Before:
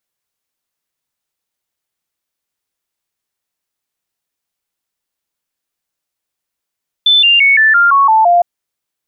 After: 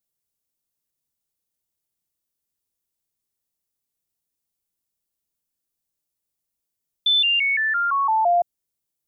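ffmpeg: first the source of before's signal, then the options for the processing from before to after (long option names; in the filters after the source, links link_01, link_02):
-f lavfi -i "aevalsrc='0.531*clip(min(mod(t,0.17),0.17-mod(t,0.17))/0.005,0,1)*sin(2*PI*3520*pow(2,-floor(t/0.17)/3)*mod(t,0.17))':duration=1.36:sample_rate=44100"
-af "equalizer=frequency=1600:width=0.35:gain=-13"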